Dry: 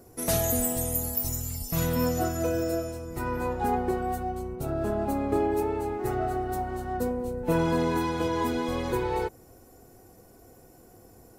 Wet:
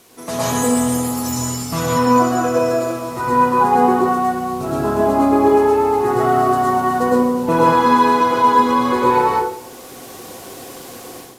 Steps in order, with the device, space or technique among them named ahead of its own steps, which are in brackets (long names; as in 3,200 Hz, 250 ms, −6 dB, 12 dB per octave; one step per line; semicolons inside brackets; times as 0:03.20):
filmed off a television (band-pass filter 160–7,700 Hz; parametric band 1,100 Hz +11 dB 0.43 octaves; convolution reverb RT60 0.55 s, pre-delay 104 ms, DRR −4 dB; white noise bed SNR 26 dB; automatic gain control gain up to 13 dB; level −1.5 dB; AAC 96 kbit/s 32,000 Hz)